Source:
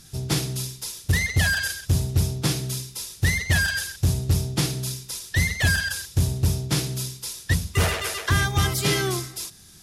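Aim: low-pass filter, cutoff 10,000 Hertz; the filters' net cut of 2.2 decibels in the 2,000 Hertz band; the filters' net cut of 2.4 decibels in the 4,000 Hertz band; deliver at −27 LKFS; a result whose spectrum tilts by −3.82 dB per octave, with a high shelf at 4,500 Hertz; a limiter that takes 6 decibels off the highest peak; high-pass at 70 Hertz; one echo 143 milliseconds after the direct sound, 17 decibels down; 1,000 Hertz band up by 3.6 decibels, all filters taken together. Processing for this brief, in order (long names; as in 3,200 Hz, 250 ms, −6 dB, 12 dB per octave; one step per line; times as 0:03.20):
high-pass filter 70 Hz
low-pass filter 10,000 Hz
parametric band 1,000 Hz +6 dB
parametric band 2,000 Hz −5 dB
parametric band 4,000 Hz −7 dB
high-shelf EQ 4,500 Hz +8 dB
brickwall limiter −14.5 dBFS
single-tap delay 143 ms −17 dB
level −0.5 dB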